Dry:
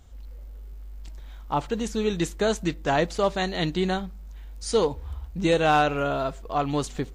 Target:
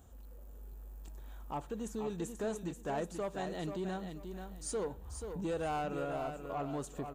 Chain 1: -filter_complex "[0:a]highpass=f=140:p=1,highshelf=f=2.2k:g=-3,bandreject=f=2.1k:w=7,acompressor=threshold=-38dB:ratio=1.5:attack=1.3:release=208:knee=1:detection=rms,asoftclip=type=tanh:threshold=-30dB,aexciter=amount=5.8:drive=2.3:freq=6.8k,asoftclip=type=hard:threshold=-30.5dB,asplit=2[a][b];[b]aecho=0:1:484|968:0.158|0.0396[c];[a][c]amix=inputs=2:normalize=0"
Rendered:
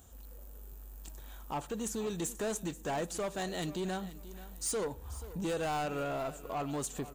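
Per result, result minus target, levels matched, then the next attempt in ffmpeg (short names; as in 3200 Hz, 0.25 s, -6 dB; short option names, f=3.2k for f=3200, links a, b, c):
echo-to-direct -8.5 dB; 4000 Hz band +5.0 dB; compressor: peak gain reduction -3.5 dB
-filter_complex "[0:a]highpass=f=140:p=1,highshelf=f=2.2k:g=-13,bandreject=f=2.1k:w=7,acompressor=threshold=-38dB:ratio=1.5:attack=1.3:release=208:knee=1:detection=rms,asoftclip=type=tanh:threshold=-30dB,aexciter=amount=5.8:drive=2.3:freq=6.8k,asoftclip=type=hard:threshold=-30.5dB,asplit=2[a][b];[b]aecho=0:1:484|968|1452:0.422|0.105|0.0264[c];[a][c]amix=inputs=2:normalize=0"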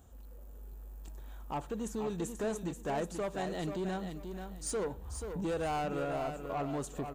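compressor: peak gain reduction -3.5 dB
-filter_complex "[0:a]highpass=f=140:p=1,highshelf=f=2.2k:g=-13,bandreject=f=2.1k:w=7,acompressor=threshold=-49dB:ratio=1.5:attack=1.3:release=208:knee=1:detection=rms,asoftclip=type=tanh:threshold=-30dB,aexciter=amount=5.8:drive=2.3:freq=6.8k,asoftclip=type=hard:threshold=-30.5dB,asplit=2[a][b];[b]aecho=0:1:484|968|1452:0.422|0.105|0.0264[c];[a][c]amix=inputs=2:normalize=0"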